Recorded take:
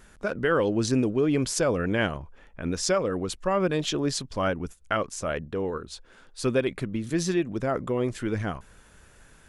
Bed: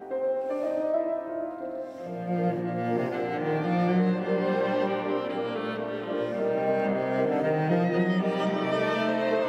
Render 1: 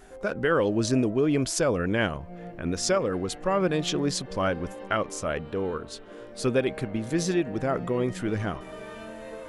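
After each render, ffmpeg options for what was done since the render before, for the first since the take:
ffmpeg -i in.wav -i bed.wav -filter_complex "[1:a]volume=-14.5dB[link_01];[0:a][link_01]amix=inputs=2:normalize=0" out.wav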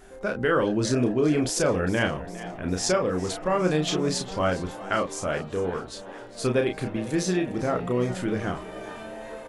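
ffmpeg -i in.wav -filter_complex "[0:a]asplit=2[link_01][link_02];[link_02]adelay=33,volume=-5dB[link_03];[link_01][link_03]amix=inputs=2:normalize=0,asplit=7[link_04][link_05][link_06][link_07][link_08][link_09][link_10];[link_05]adelay=406,afreqshift=100,volume=-16.5dB[link_11];[link_06]adelay=812,afreqshift=200,volume=-21.1dB[link_12];[link_07]adelay=1218,afreqshift=300,volume=-25.7dB[link_13];[link_08]adelay=1624,afreqshift=400,volume=-30.2dB[link_14];[link_09]adelay=2030,afreqshift=500,volume=-34.8dB[link_15];[link_10]adelay=2436,afreqshift=600,volume=-39.4dB[link_16];[link_04][link_11][link_12][link_13][link_14][link_15][link_16]amix=inputs=7:normalize=0" out.wav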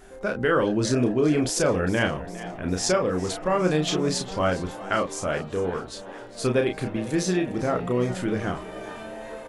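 ffmpeg -i in.wav -af "volume=1dB" out.wav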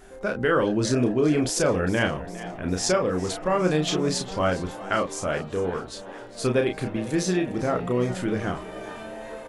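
ffmpeg -i in.wav -af anull out.wav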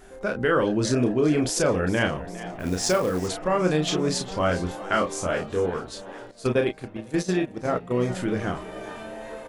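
ffmpeg -i in.wav -filter_complex "[0:a]asettb=1/sr,asplit=3[link_01][link_02][link_03];[link_01]atrim=end=2.594[link_04];[link_02]atrim=start=2.59:end=3.28,asetpts=PTS-STARTPTS,afade=type=in:duration=0.004:curve=qsin,afade=type=out:start_time=0.686:duration=0.004:curve=qsin,acrusher=bits=5:mode=log:mix=0:aa=0.000001[link_05];[link_03]atrim=start=3.276[link_06];[link_04][link_05]acrossfade=duration=0.004:curve1=hsin:curve2=qsin[link_07];[link_07][link_06]acrossfade=duration=0.004:curve1=qsin:curve2=hsin,asettb=1/sr,asplit=3[link_08][link_09][link_10];[link_08]atrim=end=4.484[link_11];[link_09]atrim=start=4.48:end=5.66,asetpts=PTS-STARTPTS,afade=type=in:duration=0.004:curve=qsin,afade=type=out:start_time=1.176:duration=0.004:curve=qsin,asplit=2[link_12][link_13];[link_13]adelay=23,volume=-5.5dB[link_14];[link_12][link_14]amix=inputs=2:normalize=0,atrim=end_sample=52038[link_15];[link_10]atrim=start=5.656[link_16];[link_11][link_15]acrossfade=duration=0.004:curve1=hsin:curve2=qsin[link_17];[link_17][link_16]acrossfade=duration=0.004:curve1=qsin:curve2=hsin,asettb=1/sr,asplit=3[link_18][link_19][link_20];[link_18]atrim=end=6.314[link_21];[link_19]atrim=start=6.31:end=7.95,asetpts=PTS-STARTPTS,afade=type=in:duration=0.004:curve=qsin,afade=type=out:start_time=1.636:duration=0.004:curve=qsin,agate=range=-11dB:threshold=-26dB:ratio=16:release=100:detection=peak[link_22];[link_20]atrim=start=7.946[link_23];[link_21][link_22]acrossfade=duration=0.004:curve1=hsin:curve2=qsin[link_24];[link_24][link_23]acrossfade=duration=0.004:curve1=qsin:curve2=hsin" out.wav

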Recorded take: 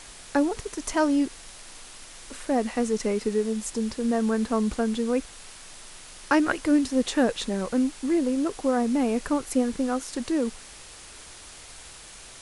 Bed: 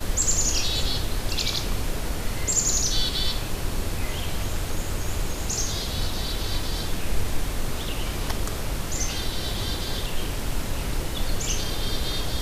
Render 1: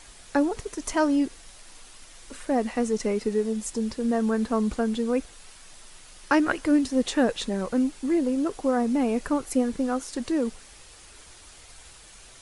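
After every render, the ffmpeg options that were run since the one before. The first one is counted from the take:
ffmpeg -i in.wav -af "afftdn=noise_reduction=6:noise_floor=-46" out.wav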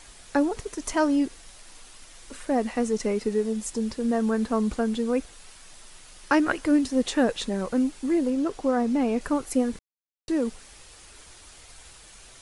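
ffmpeg -i in.wav -filter_complex "[0:a]asettb=1/sr,asplit=3[link_01][link_02][link_03];[link_01]atrim=end=8.304[link_04];[link_02]atrim=start=8.3:end=9.21,asetpts=PTS-STARTPTS,afade=type=in:duration=0.004:curve=qsin,afade=type=out:start_time=0.906:duration=0.004:curve=qsin,acrossover=split=7500[link_05][link_06];[link_06]acompressor=threshold=-60dB:ratio=4:attack=1:release=60[link_07];[link_05][link_07]amix=inputs=2:normalize=0[link_08];[link_03]atrim=start=9.206[link_09];[link_04][link_08]acrossfade=duration=0.004:curve1=hsin:curve2=qsin[link_10];[link_10][link_09]acrossfade=duration=0.004:curve1=qsin:curve2=hsin,asplit=3[link_11][link_12][link_13];[link_11]atrim=end=9.79,asetpts=PTS-STARTPTS,afade=type=out:start_time=9.786:duration=0.004:curve=hsin[link_14];[link_12]atrim=start=9.79:end=10.28,asetpts=PTS-STARTPTS,volume=0[link_15];[link_13]atrim=start=10.28,asetpts=PTS-STARTPTS,afade=type=in:duration=0.004:curve=hsin[link_16];[link_14][link_15][link_16]concat=n=3:v=0:a=1" out.wav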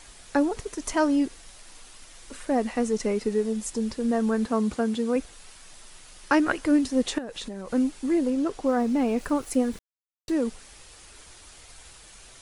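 ffmpeg -i in.wav -filter_complex "[0:a]asettb=1/sr,asplit=3[link_01][link_02][link_03];[link_01]atrim=end=4.464[link_04];[link_02]atrim=start=4.46:end=5.16,asetpts=PTS-STARTPTS,afade=type=in:duration=0.004:curve=qsin,afade=type=out:start_time=0.696:duration=0.004:curve=qsin,highpass=74[link_05];[link_03]atrim=start=5.156[link_06];[link_04][link_05]acrossfade=duration=0.004:curve1=hsin:curve2=qsin[link_07];[link_07][link_06]acrossfade=duration=0.004:curve1=qsin:curve2=hsin,asettb=1/sr,asplit=3[link_08][link_09][link_10];[link_08]atrim=end=7.184[link_11];[link_09]atrim=start=7.18:end=7.71,asetpts=PTS-STARTPTS,afade=type=in:duration=0.004:curve=qsin,afade=type=out:start_time=0.526:duration=0.004:curve=qsin,acompressor=threshold=-31dB:ratio=10:attack=3.2:release=140:knee=1:detection=peak[link_12];[link_10]atrim=start=7.706[link_13];[link_11][link_12]acrossfade=duration=0.004:curve1=hsin:curve2=qsin[link_14];[link_14][link_13]acrossfade=duration=0.004:curve1=qsin:curve2=hsin,asettb=1/sr,asplit=3[link_15][link_16][link_17];[link_15]atrim=end=8.664[link_18];[link_16]atrim=start=8.66:end=10.35,asetpts=PTS-STARTPTS,afade=type=in:duration=0.004:curve=qsin,afade=type=out:start_time=1.686:duration=0.004:curve=qsin,aeval=exprs='val(0)*gte(abs(val(0)),0.00501)':channel_layout=same[link_19];[link_17]atrim=start=10.346[link_20];[link_18][link_19]acrossfade=duration=0.004:curve1=hsin:curve2=qsin[link_21];[link_21][link_20]acrossfade=duration=0.004:curve1=qsin:curve2=hsin" out.wav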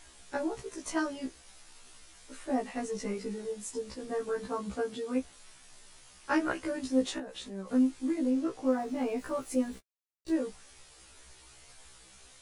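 ffmpeg -i in.wav -af "flanger=delay=2.7:depth=8.6:regen=-63:speed=0.4:shape=triangular,afftfilt=real='re*1.73*eq(mod(b,3),0)':imag='im*1.73*eq(mod(b,3),0)':win_size=2048:overlap=0.75" out.wav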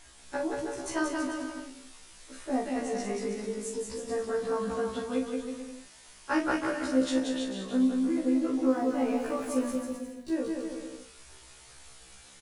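ffmpeg -i in.wav -filter_complex "[0:a]asplit=2[link_01][link_02];[link_02]adelay=42,volume=-7dB[link_03];[link_01][link_03]amix=inputs=2:normalize=0,asplit=2[link_04][link_05];[link_05]aecho=0:1:180|324|439.2|531.4|605.1:0.631|0.398|0.251|0.158|0.1[link_06];[link_04][link_06]amix=inputs=2:normalize=0" out.wav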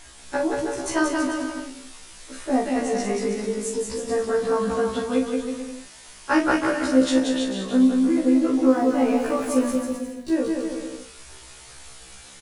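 ffmpeg -i in.wav -af "volume=8dB" out.wav

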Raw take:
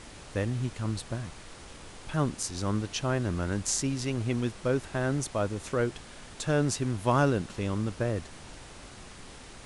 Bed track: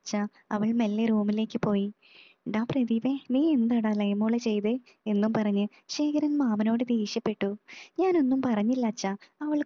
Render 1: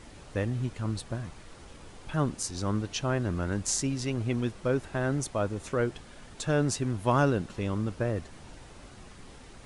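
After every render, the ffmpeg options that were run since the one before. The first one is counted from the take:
ffmpeg -i in.wav -af "afftdn=noise_reduction=6:noise_floor=-48" out.wav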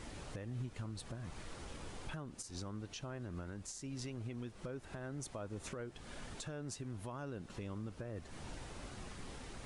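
ffmpeg -i in.wav -af "acompressor=threshold=-35dB:ratio=12,alimiter=level_in=10dB:limit=-24dB:level=0:latency=1:release=291,volume=-10dB" out.wav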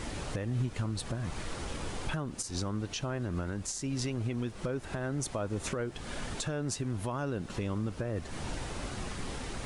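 ffmpeg -i in.wav -af "volume=10.5dB" out.wav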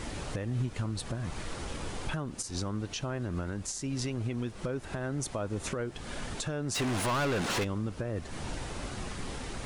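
ffmpeg -i in.wav -filter_complex "[0:a]asplit=3[link_01][link_02][link_03];[link_01]afade=type=out:start_time=6.74:duration=0.02[link_04];[link_02]asplit=2[link_05][link_06];[link_06]highpass=frequency=720:poles=1,volume=30dB,asoftclip=type=tanh:threshold=-23dB[link_07];[link_05][link_07]amix=inputs=2:normalize=0,lowpass=frequency=6900:poles=1,volume=-6dB,afade=type=in:start_time=6.74:duration=0.02,afade=type=out:start_time=7.63:duration=0.02[link_08];[link_03]afade=type=in:start_time=7.63:duration=0.02[link_09];[link_04][link_08][link_09]amix=inputs=3:normalize=0" out.wav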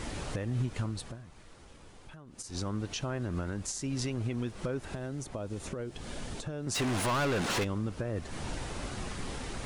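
ffmpeg -i in.wav -filter_complex "[0:a]asettb=1/sr,asplit=3[link_01][link_02][link_03];[link_01]atrim=end=4.904[link_04];[link_02]atrim=start=4.9:end=6.67,asetpts=PTS-STARTPTS,afade=type=in:duration=0.004:curve=qsin,afade=type=out:start_time=1.766:duration=0.004:curve=qsin,acrossover=split=850|2400[link_05][link_06][link_07];[link_05]acompressor=threshold=-34dB:ratio=4[link_08];[link_06]acompressor=threshold=-55dB:ratio=4[link_09];[link_07]acompressor=threshold=-46dB:ratio=4[link_10];[link_08][link_09][link_10]amix=inputs=3:normalize=0[link_11];[link_03]atrim=start=6.666[link_12];[link_04][link_11]acrossfade=duration=0.004:curve1=hsin:curve2=qsin[link_13];[link_13][link_12]acrossfade=duration=0.004:curve1=qsin:curve2=hsin,asplit=3[link_14][link_15][link_16];[link_14]atrim=end=1.25,asetpts=PTS-STARTPTS,afade=type=out:start_time=0.83:duration=0.42:silence=0.158489[link_17];[link_15]atrim=start=1.25:end=2.26,asetpts=PTS-STARTPTS,volume=-16dB[link_18];[link_16]atrim=start=2.26,asetpts=PTS-STARTPTS,afade=type=in:duration=0.42:silence=0.158489[link_19];[link_17][link_18][link_19]concat=n=3:v=0:a=1" out.wav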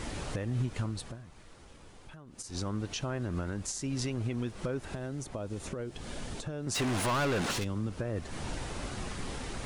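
ffmpeg -i in.wav -filter_complex "[0:a]asettb=1/sr,asplit=3[link_01][link_02][link_03];[link_01]atrim=end=7.514[link_04];[link_02]atrim=start=7.51:end=7.97,asetpts=PTS-STARTPTS,afade=type=in:duration=0.004:curve=qsin,afade=type=out:start_time=0.456:duration=0.004:curve=qsin,acrossover=split=280|3000[link_05][link_06][link_07];[link_06]acompressor=threshold=-38dB:ratio=6:attack=3.2:release=140:knee=2.83:detection=peak[link_08];[link_05][link_08][link_07]amix=inputs=3:normalize=0[link_09];[link_03]atrim=start=7.966[link_10];[link_04][link_09]acrossfade=duration=0.004:curve1=hsin:curve2=qsin[link_11];[link_11][link_10]acrossfade=duration=0.004:curve1=qsin:curve2=hsin" out.wav

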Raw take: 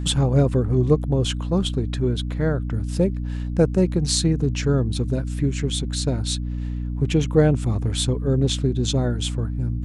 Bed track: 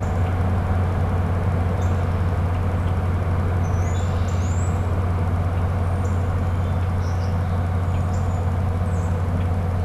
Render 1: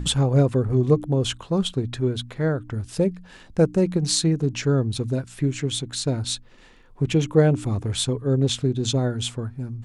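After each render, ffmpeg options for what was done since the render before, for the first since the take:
ffmpeg -i in.wav -af "bandreject=frequency=60:width_type=h:width=4,bandreject=frequency=120:width_type=h:width=4,bandreject=frequency=180:width_type=h:width=4,bandreject=frequency=240:width_type=h:width=4,bandreject=frequency=300:width_type=h:width=4" out.wav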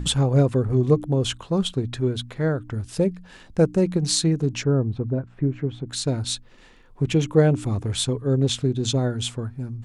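ffmpeg -i in.wav -filter_complex "[0:a]asplit=3[link_01][link_02][link_03];[link_01]afade=type=out:start_time=4.62:duration=0.02[link_04];[link_02]lowpass=1200,afade=type=in:start_time=4.62:duration=0.02,afade=type=out:start_time=5.86:duration=0.02[link_05];[link_03]afade=type=in:start_time=5.86:duration=0.02[link_06];[link_04][link_05][link_06]amix=inputs=3:normalize=0" out.wav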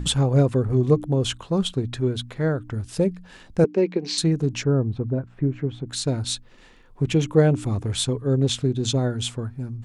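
ffmpeg -i in.wav -filter_complex "[0:a]asettb=1/sr,asplit=3[link_01][link_02][link_03];[link_01]atrim=end=3.644[link_04];[link_02]atrim=start=3.64:end=4.18,asetpts=PTS-STARTPTS,afade=type=in:duration=0.004:curve=qsin,afade=type=out:start_time=0.536:duration=0.004:curve=qsin,highpass=frequency=230:width=0.5412,highpass=frequency=230:width=1.3066,equalizer=frequency=420:width_type=q:width=4:gain=6,equalizer=frequency=630:width_type=q:width=4:gain=-3,equalizer=frequency=1300:width_type=q:width=4:gain=-7,equalizer=frequency=2300:width_type=q:width=4:gain=7,equalizer=frequency=3700:width_type=q:width=4:gain=-4,lowpass=frequency=4900:width=0.5412,lowpass=frequency=4900:width=1.3066[link_05];[link_03]atrim=start=4.176[link_06];[link_04][link_05]acrossfade=duration=0.004:curve1=hsin:curve2=qsin[link_07];[link_07][link_06]acrossfade=duration=0.004:curve1=qsin:curve2=hsin" out.wav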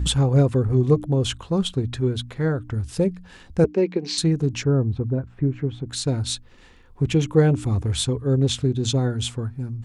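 ffmpeg -i in.wav -af "equalizer=frequency=70:width=2.1:gain=12,bandreject=frequency=620:width=12" out.wav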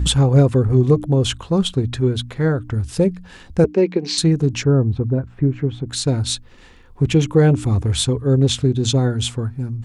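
ffmpeg -i in.wav -af "volume=4.5dB,alimiter=limit=-3dB:level=0:latency=1" out.wav

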